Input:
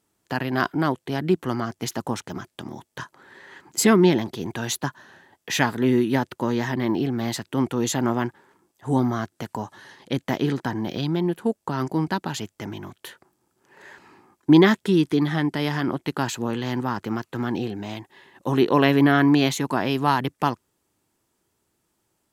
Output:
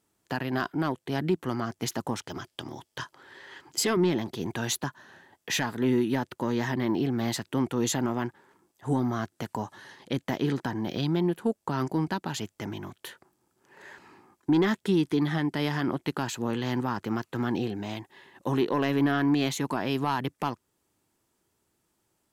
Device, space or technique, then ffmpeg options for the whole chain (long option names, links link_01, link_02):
soft clipper into limiter: -filter_complex "[0:a]asettb=1/sr,asplit=3[link_01][link_02][link_03];[link_01]atrim=end=2.194[link_04];[link_02]atrim=start=2.19:end=3.97,asetpts=PTS-STARTPTS,afade=type=in:duration=0.004:curve=qsin,afade=type=out:start_time=1.776:duration=0.004:curve=qsin,equalizer=frequency=200:width_type=o:width=0.33:gain=-11,equalizer=frequency=3150:width_type=o:width=0.33:gain=6,equalizer=frequency=5000:width_type=o:width=0.33:gain=6[link_05];[link_03]atrim=start=3.966[link_06];[link_04][link_05]acrossfade=duration=0.004:curve1=hsin:curve2=qsin[link_07];[link_07][link_06]acrossfade=duration=0.004:curve1=qsin:curve2=hsin,asoftclip=type=tanh:threshold=-8dB,alimiter=limit=-14.5dB:level=0:latency=1:release=338,volume=-2dB"